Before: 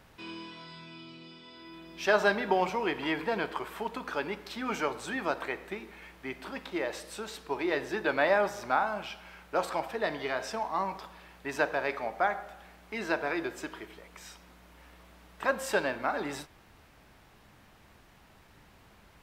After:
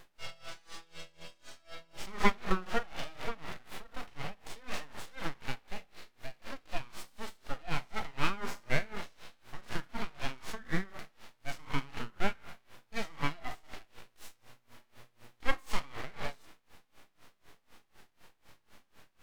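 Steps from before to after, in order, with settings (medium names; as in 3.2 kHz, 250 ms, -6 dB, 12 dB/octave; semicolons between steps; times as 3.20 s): de-hum 63.54 Hz, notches 7; in parallel at -3 dB: peak limiter -20 dBFS, peak gain reduction 8.5 dB; on the sum: full-wave rectifier; harmonic-percussive split percussive -17 dB; logarithmic tremolo 4 Hz, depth 24 dB; trim +4 dB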